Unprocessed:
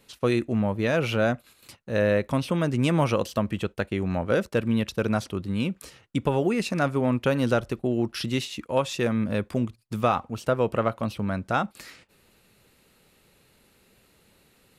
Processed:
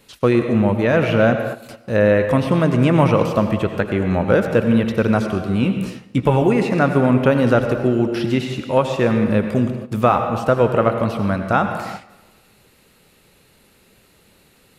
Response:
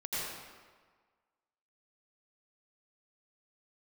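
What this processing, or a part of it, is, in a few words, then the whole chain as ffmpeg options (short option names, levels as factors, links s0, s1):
keyed gated reverb: -filter_complex "[0:a]acrossover=split=2600[s0][s1];[s1]acompressor=threshold=0.00501:ratio=4:attack=1:release=60[s2];[s0][s2]amix=inputs=2:normalize=0,asplit=3[s3][s4][s5];[1:a]atrim=start_sample=2205[s6];[s4][s6]afir=irnorm=-1:irlink=0[s7];[s5]apad=whole_len=651965[s8];[s7][s8]sidechaingate=range=0.282:threshold=0.00355:ratio=16:detection=peak,volume=0.376[s9];[s3][s9]amix=inputs=2:normalize=0,asettb=1/sr,asplit=3[s10][s11][s12];[s10]atrim=end=5.614[s13];[s11]atrim=start=5.61:end=6.42,asetpts=PTS-STARTPTS,afade=t=in:d=0.004:c=qsin,afade=t=out:st=0.806:d=0.004:c=qsin,asplit=2[s14][s15];[s15]adelay=16,volume=0.447[s16];[s14][s16]amix=inputs=2:normalize=0,atrim=end_sample=35721[s17];[s12]atrim=start=6.416[s18];[s13][s17]acrossfade=d=0.004:c1=hsin:c2=qsin[s19];[s19][s18]acrossfade=d=0.004:c1=qsin:c2=hsin,volume=2"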